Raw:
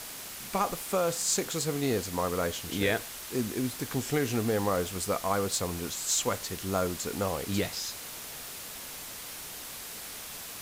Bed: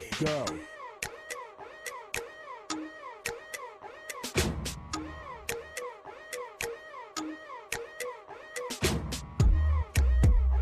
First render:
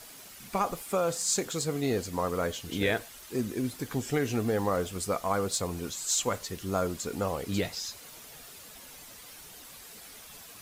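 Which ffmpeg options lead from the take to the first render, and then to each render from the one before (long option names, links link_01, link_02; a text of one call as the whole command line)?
ffmpeg -i in.wav -af "afftdn=noise_reduction=9:noise_floor=-42" out.wav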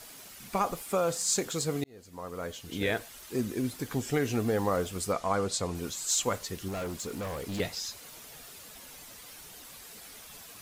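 ffmpeg -i in.wav -filter_complex "[0:a]asettb=1/sr,asplit=3[link_01][link_02][link_03];[link_01]atrim=end=5.124[link_04];[link_02]atrim=start=5.12:end=5.75,asetpts=PTS-STARTPTS,afade=type=in:duration=0.004:curve=qsin,afade=type=out:start_time=0.626:duration=0.004:curve=qsin,lowpass=8400[link_05];[link_03]atrim=start=5.746[link_06];[link_04][link_05]acrossfade=duration=0.004:curve1=hsin:curve2=qsin[link_07];[link_07][link_06]acrossfade=duration=0.004:curve1=qsin:curve2=hsin,asettb=1/sr,asplit=3[link_08][link_09][link_10];[link_08]atrim=end=6.684[link_11];[link_09]atrim=start=6.68:end=7.6,asetpts=PTS-STARTPTS,afade=type=in:duration=0.004:curve=qsin,afade=type=out:start_time=0.916:duration=0.004:curve=qsin,volume=32.5dB,asoftclip=hard,volume=-32.5dB[link_12];[link_10]atrim=start=7.596[link_13];[link_11][link_12]acrossfade=duration=0.004:curve1=hsin:curve2=qsin[link_14];[link_14][link_13]acrossfade=duration=0.004:curve1=qsin:curve2=hsin,asplit=2[link_15][link_16];[link_15]atrim=end=1.84,asetpts=PTS-STARTPTS,afade=type=out:start_time=1.836:duration=0.004:curve=hsin[link_17];[link_16]atrim=start=1.84,asetpts=PTS-STARTPTS,afade=type=in:duration=1.32[link_18];[link_17][link_18]concat=n=2:v=0:a=1" out.wav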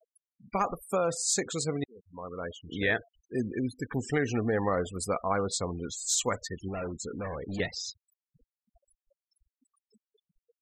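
ffmpeg -i in.wav -af "afftfilt=real='re*gte(hypot(re,im),0.0141)':imag='im*gte(hypot(re,im),0.0141)':win_size=1024:overlap=0.75,equalizer=frequency=1800:width_type=o:width=0.22:gain=9.5" out.wav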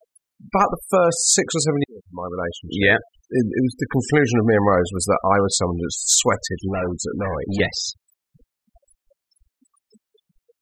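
ffmpeg -i in.wav -af "volume=11.5dB" out.wav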